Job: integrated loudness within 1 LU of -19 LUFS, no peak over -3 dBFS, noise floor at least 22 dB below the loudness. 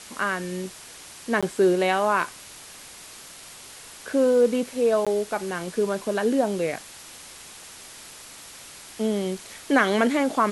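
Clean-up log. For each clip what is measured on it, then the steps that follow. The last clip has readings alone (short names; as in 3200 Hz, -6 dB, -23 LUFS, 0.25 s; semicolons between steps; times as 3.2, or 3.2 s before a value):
dropouts 2; longest dropout 16 ms; noise floor -44 dBFS; noise floor target -46 dBFS; loudness -24.0 LUFS; peak -5.5 dBFS; loudness target -19.0 LUFS
-> interpolate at 1.41/5.05, 16 ms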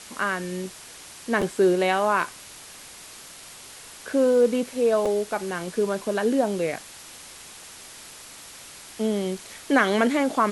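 dropouts 0; noise floor -44 dBFS; noise floor target -46 dBFS
-> noise print and reduce 6 dB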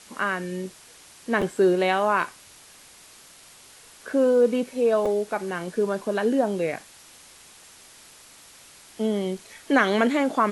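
noise floor -50 dBFS; loudness -24.0 LUFS; peak -5.5 dBFS; loudness target -19.0 LUFS
-> gain +5 dB; limiter -3 dBFS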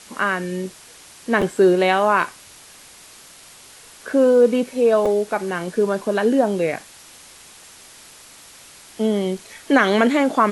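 loudness -19.0 LUFS; peak -3.0 dBFS; noise floor -45 dBFS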